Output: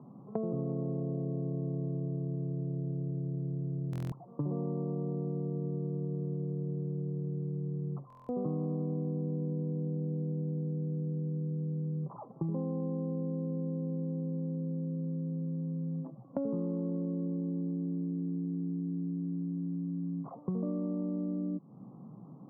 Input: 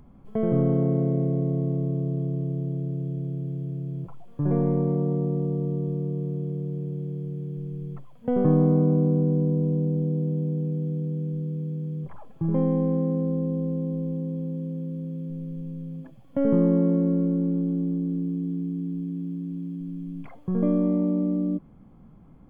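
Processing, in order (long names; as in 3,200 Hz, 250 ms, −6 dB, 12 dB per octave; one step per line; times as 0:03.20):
Chebyshev band-pass filter 120–1,200 Hz, order 5
downward compressor 6 to 1, threshold −36 dBFS, peak gain reduction 18 dB
buffer that repeats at 0:03.91/0:08.08, samples 1,024, times 8
level +3.5 dB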